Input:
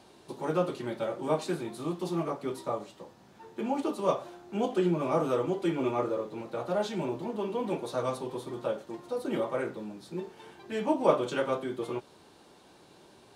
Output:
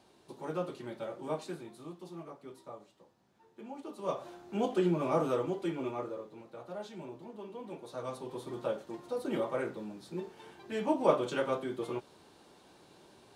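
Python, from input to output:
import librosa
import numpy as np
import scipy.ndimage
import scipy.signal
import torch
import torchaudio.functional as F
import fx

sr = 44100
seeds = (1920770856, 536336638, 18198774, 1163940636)

y = fx.gain(x, sr, db=fx.line((1.33, -7.5), (2.09, -14.5), (3.83, -14.5), (4.3, -2.0), (5.22, -2.0), (6.52, -12.5), (7.73, -12.5), (8.53, -2.5)))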